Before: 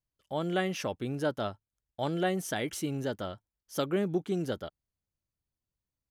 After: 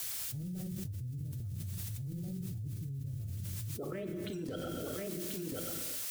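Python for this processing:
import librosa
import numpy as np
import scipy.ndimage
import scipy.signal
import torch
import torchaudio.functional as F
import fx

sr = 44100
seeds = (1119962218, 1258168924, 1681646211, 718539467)

p1 = fx.spec_quant(x, sr, step_db=30)
p2 = fx.dereverb_blind(p1, sr, rt60_s=1.7)
p3 = fx.env_lowpass(p2, sr, base_hz=700.0, full_db=-27.0)
p4 = fx.level_steps(p3, sr, step_db=20)
p5 = fx.transient(p4, sr, attack_db=-8, sustain_db=7)
p6 = fx.filter_sweep_lowpass(p5, sr, from_hz=110.0, to_hz=10000.0, start_s=3.63, end_s=4.17, q=5.3)
p7 = fx.granulator(p6, sr, seeds[0], grain_ms=100.0, per_s=20.0, spray_ms=14.0, spread_st=0)
p8 = fx.dmg_noise_colour(p7, sr, seeds[1], colour='blue', level_db=-68.0)
p9 = fx.rotary(p8, sr, hz=8.0)
p10 = p9 + fx.echo_single(p9, sr, ms=1037, db=-19.0, dry=0)
p11 = fx.rev_gated(p10, sr, seeds[2], gate_ms=470, shape='falling', drr_db=6.0)
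p12 = fx.env_flatten(p11, sr, amount_pct=100)
y = p12 * librosa.db_to_amplitude(-1.5)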